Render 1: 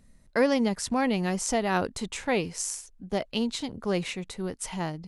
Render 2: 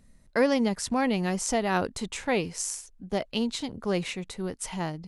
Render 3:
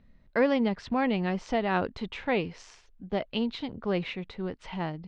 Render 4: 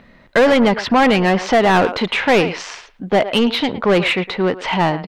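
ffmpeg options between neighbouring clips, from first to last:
-af anull
-af "lowpass=f=3.7k:w=0.5412,lowpass=f=3.7k:w=1.3066,volume=-1dB"
-filter_complex "[0:a]asplit=2[a][b];[b]adelay=110,highpass=300,lowpass=3.4k,asoftclip=type=hard:threshold=-20.5dB,volume=-17dB[c];[a][c]amix=inputs=2:normalize=0,asplit=2[d][e];[e]highpass=f=720:p=1,volume=24dB,asoftclip=type=tanh:threshold=-12dB[f];[d][f]amix=inputs=2:normalize=0,lowpass=f=2.8k:p=1,volume=-6dB,volume=7.5dB"

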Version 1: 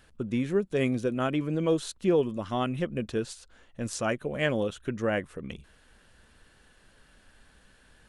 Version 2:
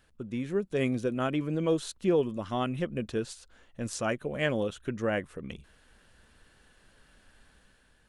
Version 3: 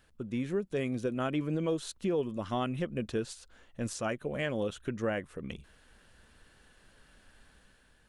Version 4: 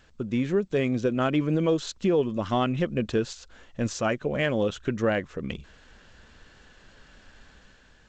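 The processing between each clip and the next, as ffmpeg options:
-af "dynaudnorm=f=120:g=9:m=5dB,volume=-6.5dB"
-af "alimiter=limit=-22dB:level=0:latency=1:release=305"
-af "volume=7.5dB" -ar 16000 -c:a g722

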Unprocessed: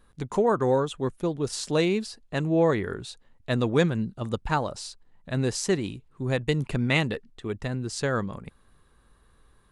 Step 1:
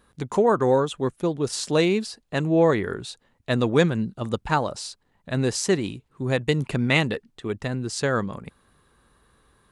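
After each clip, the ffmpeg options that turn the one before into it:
-af "highpass=f=97:p=1,volume=3.5dB"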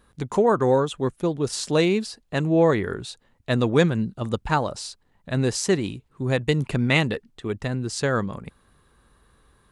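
-af "lowshelf=f=82:g=6"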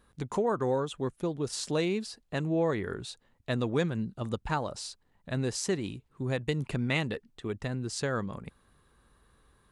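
-af "acompressor=threshold=-27dB:ratio=1.5,volume=-5dB"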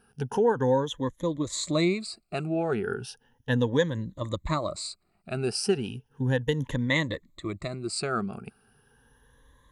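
-af "afftfilt=real='re*pow(10,17/40*sin(2*PI*(1.1*log(max(b,1)*sr/1024/100)/log(2)-(0.35)*(pts-256)/sr)))':imag='im*pow(10,17/40*sin(2*PI*(1.1*log(max(b,1)*sr/1024/100)/log(2)-(0.35)*(pts-256)/sr)))':win_size=1024:overlap=0.75"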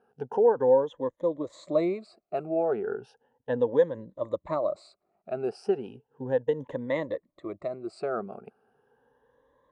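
-af "bandpass=f=580:t=q:w=2.1:csg=0,volume=5.5dB"

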